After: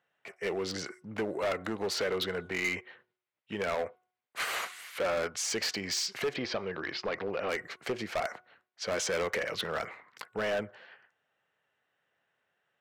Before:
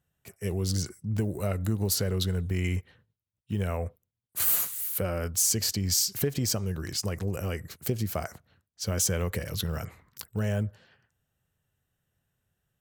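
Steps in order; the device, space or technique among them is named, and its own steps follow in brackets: megaphone (band-pass 530–2700 Hz; peaking EQ 2.1 kHz +4 dB 0.37 oct; hard clipper -35 dBFS, distortion -9 dB); 6.36–7.49 s: Chebyshev low-pass 4.3 kHz, order 3; de-hum 366.4 Hz, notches 4; trim +8.5 dB

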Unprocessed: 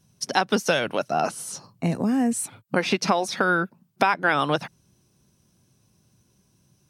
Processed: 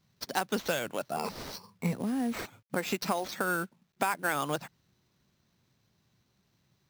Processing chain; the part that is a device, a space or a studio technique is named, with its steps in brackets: 1.16–1.93 s: rippled EQ curve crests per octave 0.86, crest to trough 17 dB; early companding sampler (sample-rate reducer 10 kHz, jitter 0%; companded quantiser 6-bit); trim -9 dB

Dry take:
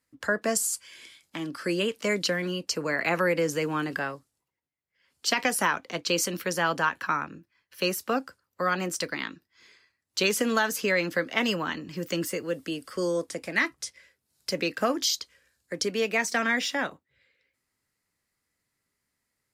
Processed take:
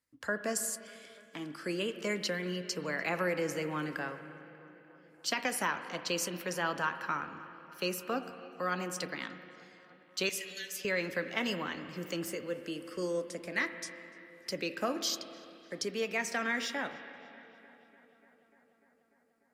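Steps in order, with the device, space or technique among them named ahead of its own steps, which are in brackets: 10.29–10.85 s: elliptic high-pass 1.9 kHz; dub delay into a spring reverb (filtered feedback delay 296 ms, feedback 79%, low-pass 3.8 kHz, level -22.5 dB; spring tank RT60 2.7 s, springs 33/39/58 ms, chirp 75 ms, DRR 9.5 dB); trim -7.5 dB

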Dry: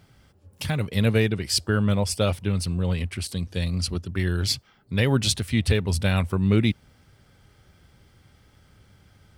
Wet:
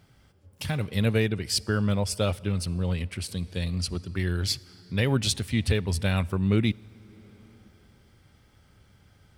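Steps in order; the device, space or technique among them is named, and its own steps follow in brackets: compressed reverb return (on a send at -11 dB: reverberation RT60 2.4 s, pre-delay 45 ms + compression 6:1, threshold -33 dBFS, peak gain reduction 18 dB); on the sum: trim -3 dB

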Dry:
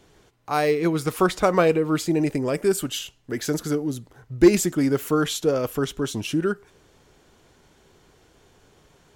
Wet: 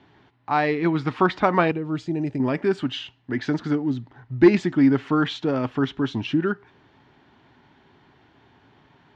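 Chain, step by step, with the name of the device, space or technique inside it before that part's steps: guitar cabinet (cabinet simulation 86–3900 Hz, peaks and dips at 120 Hz +5 dB, 260 Hz +7 dB, 490 Hz -9 dB, 890 Hz +7 dB, 1.8 kHz +5 dB); 1.71–2.40 s: graphic EQ 250/1000/2000/4000/8000 Hz -7/-10/-9/-6/+5 dB

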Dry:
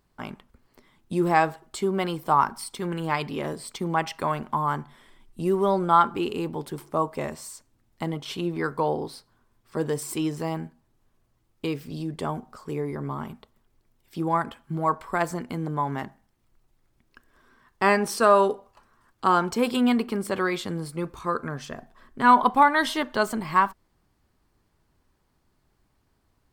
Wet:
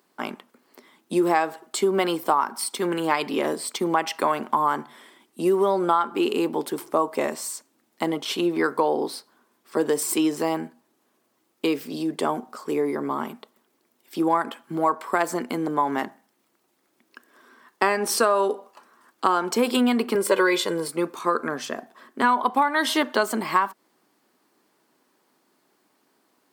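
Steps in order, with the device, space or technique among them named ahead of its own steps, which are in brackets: high-pass 250 Hz 24 dB/octave; ASMR close-microphone chain (bass shelf 200 Hz +3.5 dB; compression 8:1, threshold -23 dBFS, peak gain reduction 12 dB; treble shelf 8.5 kHz +4 dB); 20.15–20.88 s: comb 2 ms, depth 77%; trim +6.5 dB

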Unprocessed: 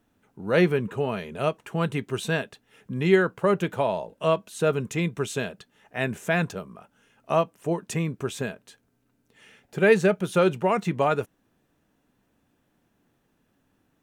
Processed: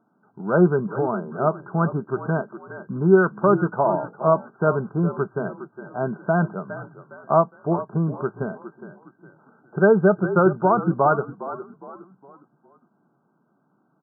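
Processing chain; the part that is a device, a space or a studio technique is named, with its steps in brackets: frequency-shifting delay pedal into a guitar cabinet (frequency-shifting echo 410 ms, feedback 39%, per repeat -46 Hz, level -13 dB; cabinet simulation 82–4200 Hz, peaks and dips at 120 Hz -8 dB, 270 Hz -7 dB, 500 Hz -9 dB, 1.8 kHz -6 dB); FFT band-pass 110–1600 Hz; trim +7 dB

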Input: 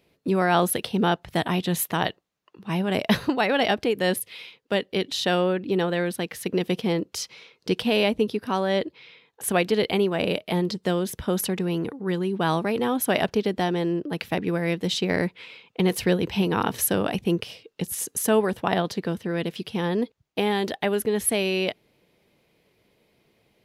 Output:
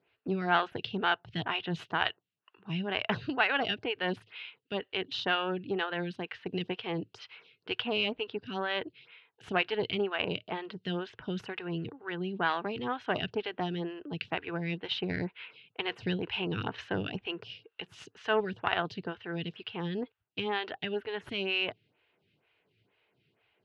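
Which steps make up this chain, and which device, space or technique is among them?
vibe pedal into a guitar amplifier (lamp-driven phase shifter 2.1 Hz; valve stage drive 11 dB, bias 0.55; cabinet simulation 79–4200 Hz, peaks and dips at 110 Hz +8 dB, 220 Hz -7 dB, 320 Hz -3 dB, 540 Hz -8 dB, 1.5 kHz +7 dB, 2.8 kHz +9 dB); trim -2.5 dB

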